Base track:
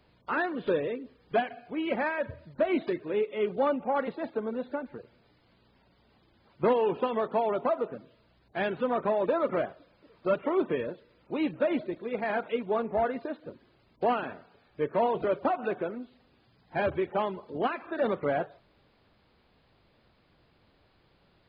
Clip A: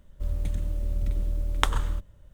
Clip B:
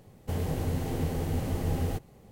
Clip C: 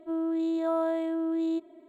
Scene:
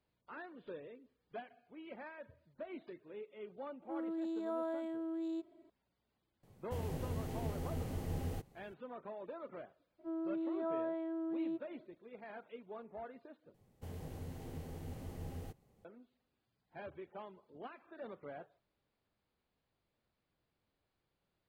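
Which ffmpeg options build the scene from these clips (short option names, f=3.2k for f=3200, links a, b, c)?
-filter_complex "[3:a]asplit=2[a][b];[2:a]asplit=2[c][d];[0:a]volume=-20dB[e];[b]lowpass=2.3k[f];[e]asplit=2[g][h];[g]atrim=end=13.544[i];[d]atrim=end=2.31,asetpts=PTS-STARTPTS,volume=-16dB[j];[h]atrim=start=15.846[k];[a]atrim=end=1.88,asetpts=PTS-STARTPTS,volume=-11dB,afade=t=in:d=0.004:c=hsin,afade=t=out:st=1.876:d=0.004:c=hsin,adelay=3820[l];[c]atrim=end=2.31,asetpts=PTS-STARTPTS,volume=-10dB,afade=t=in:d=0.004:c=hsin,afade=t=out:st=2.306:d=0.004:c=hsin,adelay=6430[m];[f]atrim=end=1.88,asetpts=PTS-STARTPTS,volume=-10dB,afade=t=in:d=0.02,afade=t=out:st=1.86:d=0.02,adelay=9980[n];[i][j]acrossfade=d=0.004:c1=hsin:c2=hsin[o];[o][k]acrossfade=d=0.004:c1=hsin:c2=hsin[p];[p][l][m][n]amix=inputs=4:normalize=0"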